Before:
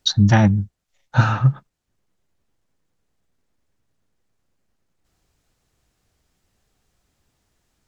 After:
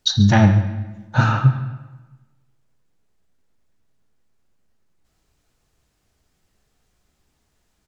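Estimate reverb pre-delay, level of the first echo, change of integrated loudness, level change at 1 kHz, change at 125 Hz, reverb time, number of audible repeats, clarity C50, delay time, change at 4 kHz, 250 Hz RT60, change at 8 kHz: 5 ms, −16.5 dB, 0.0 dB, +1.0 dB, +1.0 dB, 1.2 s, 1, 8.5 dB, 139 ms, +1.0 dB, 1.4 s, can't be measured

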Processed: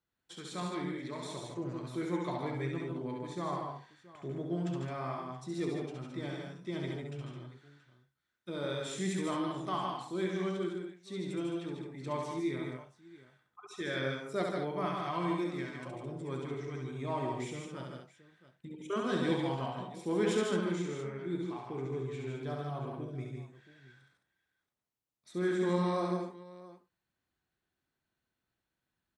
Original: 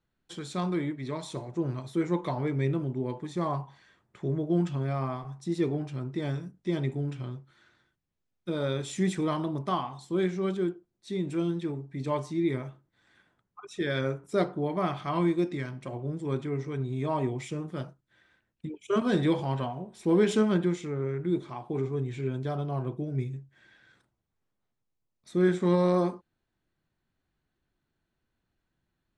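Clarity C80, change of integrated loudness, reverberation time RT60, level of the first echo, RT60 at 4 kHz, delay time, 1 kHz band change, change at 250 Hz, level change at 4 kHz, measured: no reverb audible, −6.5 dB, no reverb audible, −3.5 dB, no reverb audible, 68 ms, −3.5 dB, −7.0 dB, −2.0 dB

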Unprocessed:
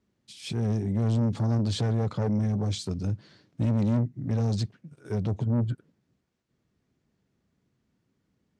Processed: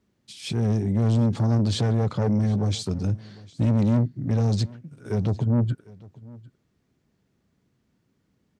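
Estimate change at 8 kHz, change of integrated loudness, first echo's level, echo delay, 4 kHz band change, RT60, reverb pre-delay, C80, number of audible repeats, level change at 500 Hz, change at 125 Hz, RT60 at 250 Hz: +4.0 dB, +4.0 dB, −22.0 dB, 752 ms, +4.0 dB, no reverb audible, no reverb audible, no reverb audible, 1, +4.0 dB, +4.0 dB, no reverb audible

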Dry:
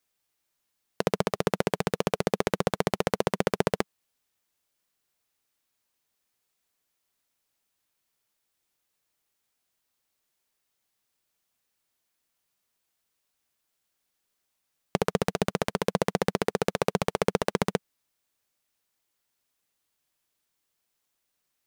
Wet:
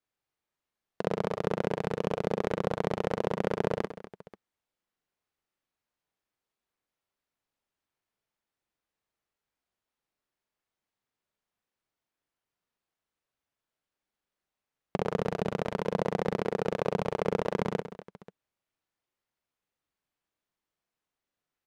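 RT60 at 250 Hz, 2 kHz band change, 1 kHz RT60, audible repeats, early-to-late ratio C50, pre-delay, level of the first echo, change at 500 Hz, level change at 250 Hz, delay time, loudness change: no reverb audible, −6.0 dB, no reverb audible, 5, no reverb audible, no reverb audible, −3.5 dB, −2.5 dB, −3.0 dB, 42 ms, −3.0 dB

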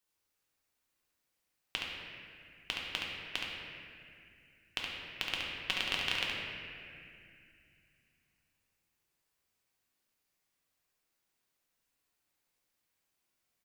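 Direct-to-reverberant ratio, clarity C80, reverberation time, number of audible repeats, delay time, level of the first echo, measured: −5.0 dB, 0.0 dB, 2.4 s, 1, 70 ms, −4.5 dB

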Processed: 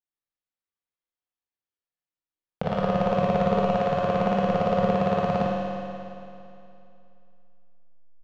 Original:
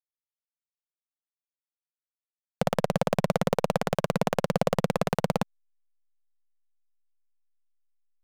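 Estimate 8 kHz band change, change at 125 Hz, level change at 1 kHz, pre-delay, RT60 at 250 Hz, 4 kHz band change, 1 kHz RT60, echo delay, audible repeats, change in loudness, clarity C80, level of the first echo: below −10 dB, +1.5 dB, +5.5 dB, 19 ms, 2.7 s, −2.5 dB, 2.7 s, 46 ms, 1, +3.0 dB, −1.5 dB, −4.0 dB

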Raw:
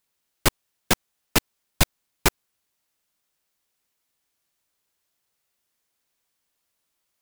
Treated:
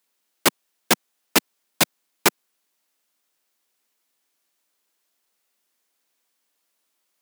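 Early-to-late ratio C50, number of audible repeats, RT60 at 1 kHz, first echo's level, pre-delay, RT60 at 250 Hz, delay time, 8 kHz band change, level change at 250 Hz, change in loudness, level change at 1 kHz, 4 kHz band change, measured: no reverb audible, no echo audible, no reverb audible, no echo audible, no reverb audible, no reverb audible, no echo audible, +3.0 dB, +1.5 dB, +2.5 dB, +3.0 dB, +3.0 dB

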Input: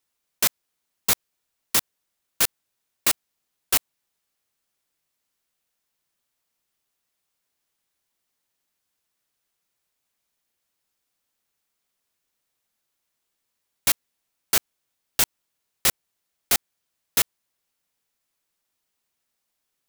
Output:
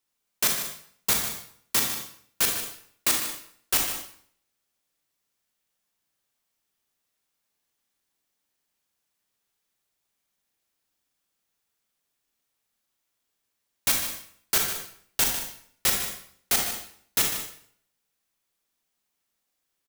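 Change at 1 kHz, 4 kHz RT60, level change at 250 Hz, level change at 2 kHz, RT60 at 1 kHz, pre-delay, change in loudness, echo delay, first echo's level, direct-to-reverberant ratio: −0.5 dB, 0.55 s, +1.0 dB, −0.5 dB, 0.60 s, 33 ms, −2.0 dB, 150 ms, −10.5 dB, 1.0 dB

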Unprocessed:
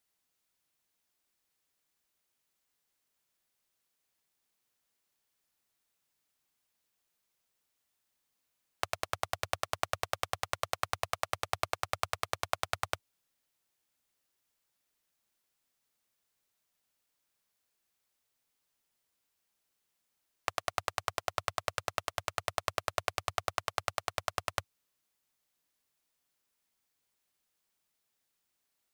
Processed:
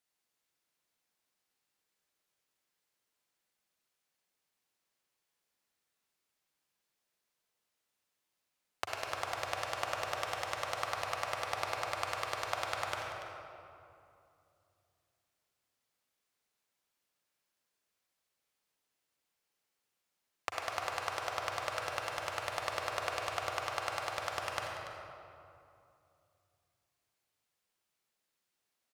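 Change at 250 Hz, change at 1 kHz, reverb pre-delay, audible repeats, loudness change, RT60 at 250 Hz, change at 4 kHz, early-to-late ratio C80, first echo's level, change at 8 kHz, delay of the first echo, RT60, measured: −0.5 dB, 0.0 dB, 38 ms, 1, −1.0 dB, 3.1 s, −1.5 dB, 1.0 dB, −13.0 dB, −3.0 dB, 286 ms, 2.6 s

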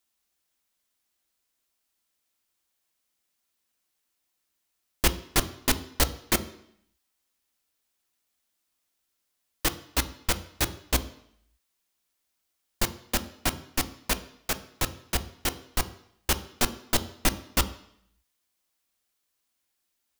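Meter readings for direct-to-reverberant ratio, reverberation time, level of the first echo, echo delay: 10.0 dB, 0.70 s, no echo audible, no echo audible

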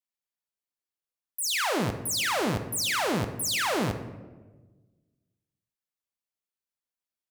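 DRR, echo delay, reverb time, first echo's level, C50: 7.0 dB, no echo audible, 1.3 s, no echo audible, 10.0 dB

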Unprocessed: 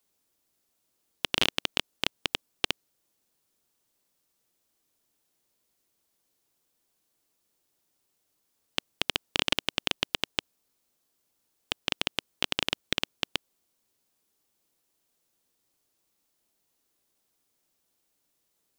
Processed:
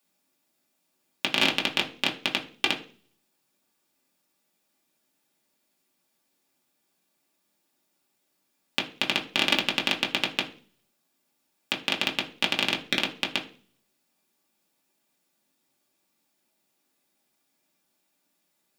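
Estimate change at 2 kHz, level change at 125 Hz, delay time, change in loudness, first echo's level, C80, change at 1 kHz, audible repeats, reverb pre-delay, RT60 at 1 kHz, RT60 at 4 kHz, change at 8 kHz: +6.0 dB, +1.5 dB, no echo audible, +4.0 dB, no echo audible, 18.0 dB, +5.0 dB, no echo audible, 3 ms, 0.40 s, 0.45 s, +0.5 dB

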